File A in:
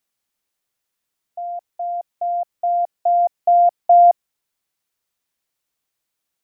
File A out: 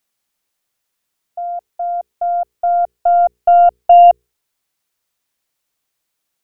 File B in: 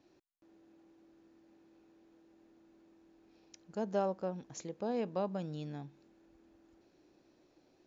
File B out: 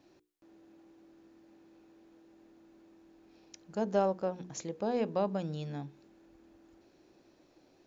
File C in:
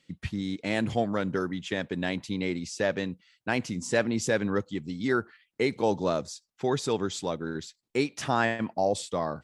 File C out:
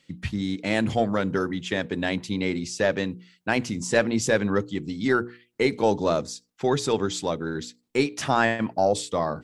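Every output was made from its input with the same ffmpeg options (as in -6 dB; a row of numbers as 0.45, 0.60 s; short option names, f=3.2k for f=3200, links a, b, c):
-af "aeval=exprs='0.501*(cos(1*acos(clip(val(0)/0.501,-1,1)))-cos(1*PI/2))+0.0141*(cos(4*acos(clip(val(0)/0.501,-1,1)))-cos(4*PI/2))':c=same,bandreject=f=60:t=h:w=6,bandreject=f=120:t=h:w=6,bandreject=f=180:t=h:w=6,bandreject=f=240:t=h:w=6,bandreject=f=300:t=h:w=6,bandreject=f=360:t=h:w=6,bandreject=f=420:t=h:w=6,bandreject=f=480:t=h:w=6,volume=4.5dB"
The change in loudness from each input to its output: +4.5, +4.0, +4.0 LU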